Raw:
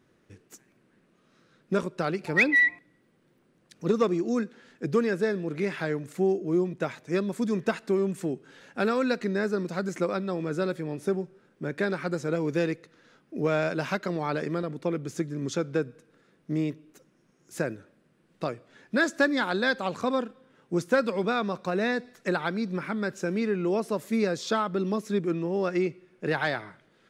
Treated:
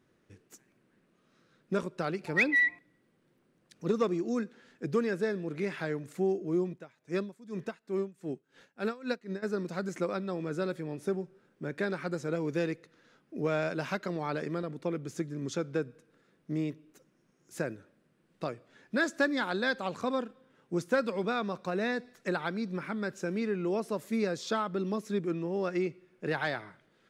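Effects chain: 6.72–9.42 s: logarithmic tremolo 1.8 Hz -> 4.9 Hz, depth 21 dB; trim -4.5 dB

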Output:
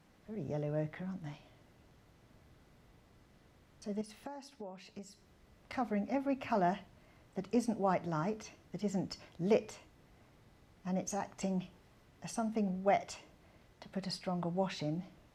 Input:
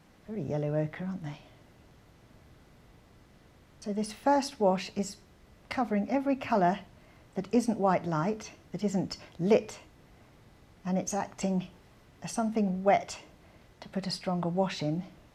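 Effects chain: 4.01–5.73 s: compression 6:1, threshold -39 dBFS, peak gain reduction 17.5 dB; trim -6 dB

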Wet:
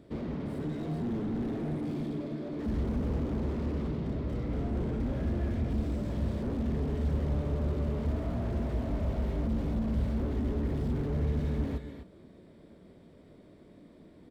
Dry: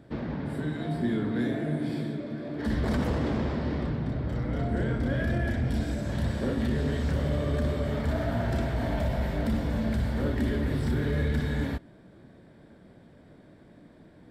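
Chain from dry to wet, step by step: graphic EQ with 31 bands 125 Hz -7 dB, 400 Hz +4 dB, 800 Hz -6 dB, 1.6 kHz -10 dB; echo from a far wall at 44 m, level -12 dB; slew-rate limiter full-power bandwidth 9.3 Hz; trim -1.5 dB

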